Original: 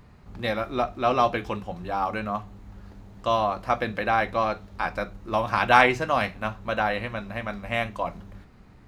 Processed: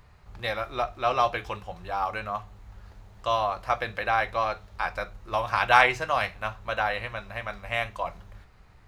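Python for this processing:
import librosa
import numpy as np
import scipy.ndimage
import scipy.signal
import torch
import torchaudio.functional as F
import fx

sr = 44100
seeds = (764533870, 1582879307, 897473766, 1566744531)

y = fx.peak_eq(x, sr, hz=240.0, db=-14.5, octaves=1.4)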